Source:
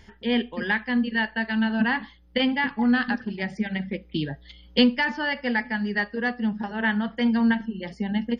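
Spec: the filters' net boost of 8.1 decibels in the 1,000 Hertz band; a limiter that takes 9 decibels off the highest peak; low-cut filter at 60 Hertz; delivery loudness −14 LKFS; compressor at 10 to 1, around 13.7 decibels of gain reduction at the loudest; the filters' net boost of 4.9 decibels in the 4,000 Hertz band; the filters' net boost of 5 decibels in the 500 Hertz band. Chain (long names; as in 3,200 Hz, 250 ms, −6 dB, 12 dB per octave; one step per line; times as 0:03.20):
high-pass filter 60 Hz
parametric band 500 Hz +3.5 dB
parametric band 1,000 Hz +8.5 dB
parametric band 4,000 Hz +6.5 dB
downward compressor 10 to 1, threshold −24 dBFS
level +17 dB
brickwall limiter −3 dBFS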